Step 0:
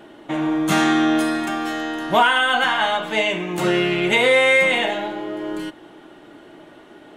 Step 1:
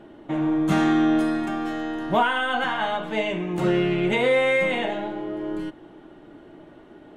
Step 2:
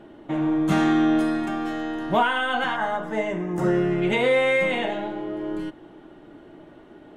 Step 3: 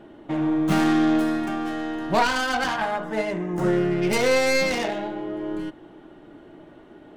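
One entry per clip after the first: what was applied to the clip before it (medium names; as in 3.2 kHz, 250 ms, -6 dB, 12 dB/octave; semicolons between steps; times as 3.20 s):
tilt EQ -2.5 dB/octave; trim -5.5 dB
time-frequency box 2.76–4.02 s, 2.1–4.8 kHz -11 dB
tracing distortion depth 0.2 ms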